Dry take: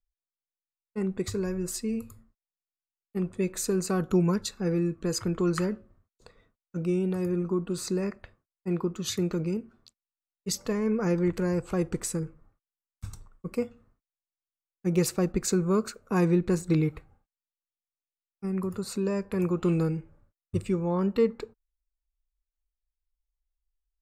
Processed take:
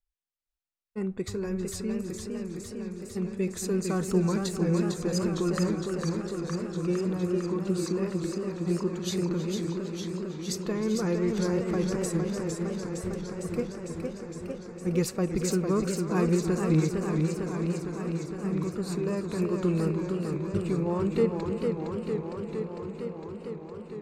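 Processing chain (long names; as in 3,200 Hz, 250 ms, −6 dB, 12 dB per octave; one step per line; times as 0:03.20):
high-shelf EQ 8,700 Hz −5 dB
tape delay 317 ms, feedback 87%, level −12 dB, low-pass 5,300 Hz
feedback echo with a swinging delay time 457 ms, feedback 77%, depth 141 cents, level −5 dB
level −2 dB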